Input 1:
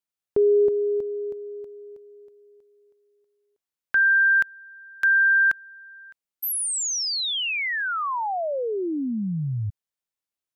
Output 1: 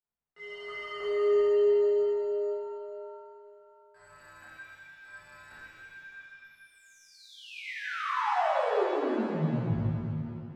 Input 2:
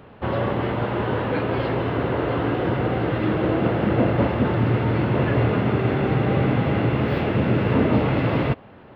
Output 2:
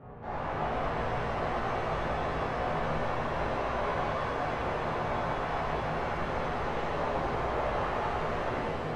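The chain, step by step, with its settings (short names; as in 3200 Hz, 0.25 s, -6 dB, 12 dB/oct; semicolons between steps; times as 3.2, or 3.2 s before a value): wrapped overs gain 21 dB; reverse; compressor 10:1, threshold -39 dBFS; reverse; chorus voices 6, 0.55 Hz, delay 18 ms, depth 1.4 ms; dynamic EQ 680 Hz, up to +7 dB, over -57 dBFS, Q 0.87; LPF 1400 Hz 12 dB/oct; shimmer reverb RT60 2.4 s, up +7 st, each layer -8 dB, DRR -10 dB; gain -1 dB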